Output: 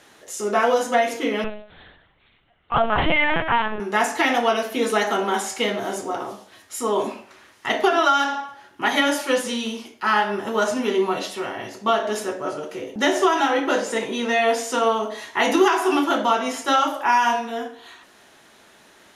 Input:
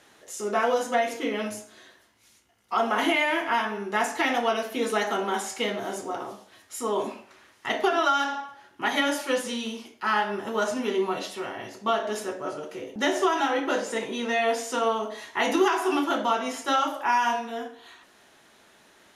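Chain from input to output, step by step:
0:01.44–0:03.80: linear-prediction vocoder at 8 kHz pitch kept
level +5 dB

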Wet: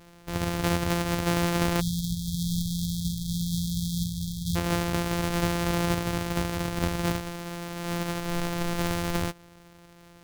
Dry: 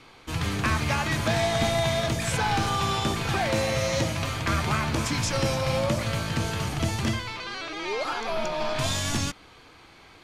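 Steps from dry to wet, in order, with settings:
samples sorted by size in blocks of 256 samples
time-frequency box erased 0:01.81–0:04.56, 220–3,200 Hz
level −1 dB

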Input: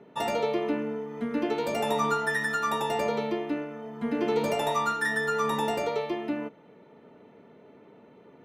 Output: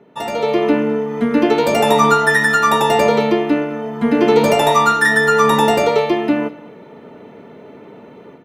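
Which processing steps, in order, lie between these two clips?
automatic gain control gain up to 11 dB
single-tap delay 209 ms −21 dB
level +3.5 dB

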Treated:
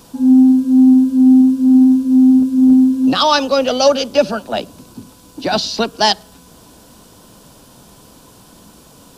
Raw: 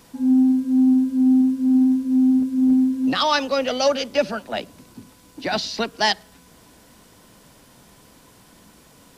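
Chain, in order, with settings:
parametric band 2,000 Hz −11 dB 0.52 octaves
level +7.5 dB

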